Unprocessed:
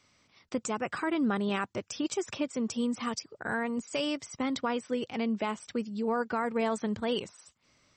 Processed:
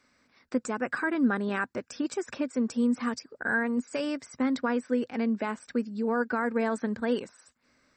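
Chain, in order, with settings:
thirty-one-band graphic EQ 100 Hz −11 dB, 160 Hz −5 dB, 250 Hz +8 dB, 500 Hz +4 dB, 1,600 Hz +10 dB, 3,150 Hz −9 dB, 6,300 Hz −6 dB
level −1 dB

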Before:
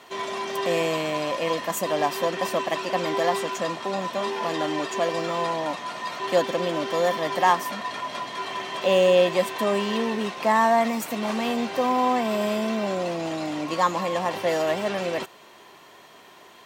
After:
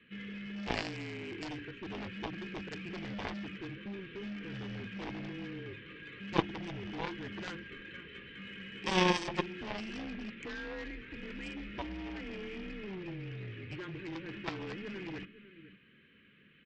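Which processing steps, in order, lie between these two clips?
mains-hum notches 60/120/180/240/300/360/420/480/540 Hz
single-sideband voice off tune −190 Hz 310–3,000 Hz
Butterworth band-reject 770 Hz, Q 0.5
single-tap delay 505 ms −16.5 dB
harmonic generator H 3 −8 dB, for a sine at −13.5 dBFS
level +7.5 dB

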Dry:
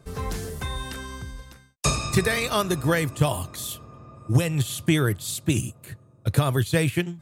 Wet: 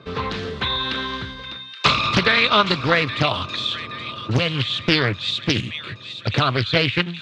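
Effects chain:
dynamic equaliser 360 Hz, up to −6 dB, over −40 dBFS, Q 2.2
in parallel at +1 dB: downward compressor, threshold −33 dBFS, peak gain reduction 17.5 dB
on the sum: loudspeaker in its box 130–4,100 Hz, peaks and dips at 150 Hz −6 dB, 750 Hz −6 dB, 1,200 Hz +5 dB, 2,500 Hz +5 dB, 3,700 Hz +9 dB
delay with a high-pass on its return 823 ms, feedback 57%, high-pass 2,000 Hz, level −10.5 dB
highs frequency-modulated by the lows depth 0.77 ms
level +4 dB

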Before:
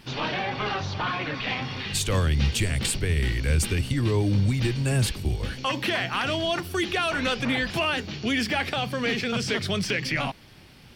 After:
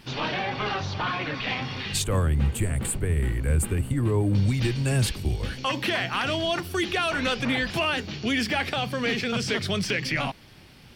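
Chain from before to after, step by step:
0:02.04–0:04.35: drawn EQ curve 1,200 Hz 0 dB, 5,600 Hz −20 dB, 8,000 Hz 0 dB

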